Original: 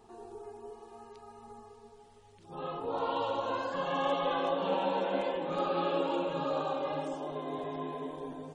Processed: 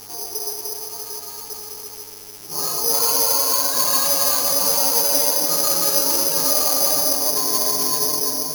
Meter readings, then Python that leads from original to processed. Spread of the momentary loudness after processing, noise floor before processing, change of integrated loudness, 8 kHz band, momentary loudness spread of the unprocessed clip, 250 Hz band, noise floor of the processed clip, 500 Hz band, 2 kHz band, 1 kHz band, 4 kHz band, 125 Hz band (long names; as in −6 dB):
15 LU, −58 dBFS, +17.0 dB, can't be measured, 19 LU, +4.5 dB, −37 dBFS, +5.0 dB, +8.0 dB, +6.0 dB, +22.5 dB, +4.5 dB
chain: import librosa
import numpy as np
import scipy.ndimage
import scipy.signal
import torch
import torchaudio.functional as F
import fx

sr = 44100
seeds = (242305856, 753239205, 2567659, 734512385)

p1 = scipy.signal.sosfilt(scipy.signal.butter(2, 2000.0, 'lowpass', fs=sr, output='sos'), x)
p2 = fx.low_shelf(p1, sr, hz=260.0, db=-11.0)
p3 = p2 + 0.72 * np.pad(p2, (int(6.7 * sr / 1000.0), 0))[:len(p2)]
p4 = fx.rider(p3, sr, range_db=4, speed_s=0.5)
p5 = p3 + F.gain(torch.from_numpy(p4), 2.0).numpy()
p6 = 10.0 ** (-24.5 / 20.0) * np.tanh(p5 / 10.0 ** (-24.5 / 20.0))
p7 = fx.dmg_buzz(p6, sr, base_hz=100.0, harmonics=34, level_db=-53.0, tilt_db=-3, odd_only=False)
p8 = p7 + fx.echo_single(p7, sr, ms=273, db=-6.5, dry=0)
p9 = (np.kron(p8[::8], np.eye(8)[0]) * 8)[:len(p8)]
y = F.gain(torch.from_numpy(p9), 1.5).numpy()